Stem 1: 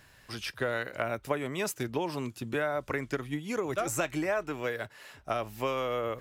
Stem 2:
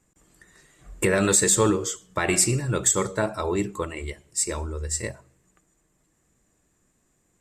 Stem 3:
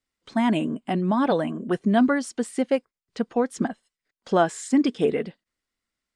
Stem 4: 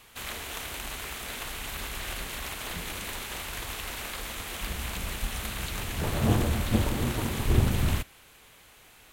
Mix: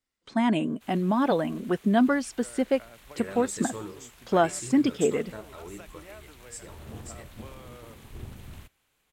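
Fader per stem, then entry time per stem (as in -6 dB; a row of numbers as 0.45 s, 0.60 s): -18.0 dB, -17.5 dB, -2.0 dB, -18.5 dB; 1.80 s, 2.15 s, 0.00 s, 0.65 s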